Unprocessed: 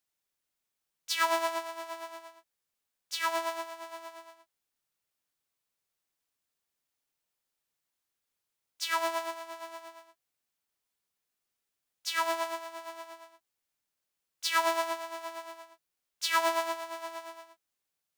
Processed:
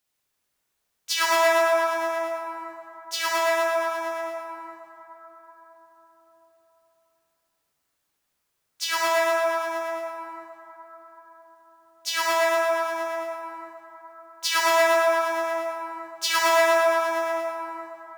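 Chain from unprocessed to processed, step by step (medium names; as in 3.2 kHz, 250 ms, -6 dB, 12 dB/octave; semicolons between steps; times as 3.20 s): plate-style reverb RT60 4.5 s, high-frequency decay 0.35×, DRR -5 dB; trim +4.5 dB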